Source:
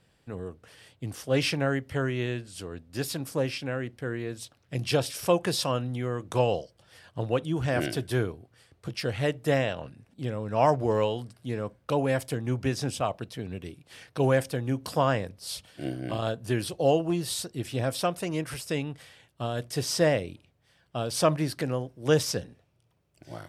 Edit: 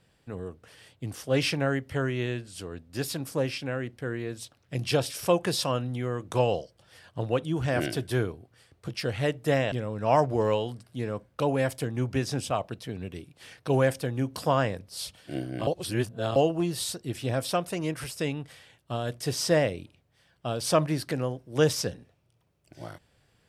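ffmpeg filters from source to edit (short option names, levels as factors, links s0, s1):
-filter_complex "[0:a]asplit=4[s0][s1][s2][s3];[s0]atrim=end=9.722[s4];[s1]atrim=start=10.218:end=16.172[s5];[s2]atrim=start=16.168:end=16.862,asetpts=PTS-STARTPTS,areverse[s6];[s3]atrim=start=16.858[s7];[s4][s5]acrossfade=d=0.004:c1=hsin:c2=hsin[s8];[s8][s6]acrossfade=d=0.004:c1=hsin:c2=hsin[s9];[s9][s7]acrossfade=d=0.004:c1=hsin:c2=hsin"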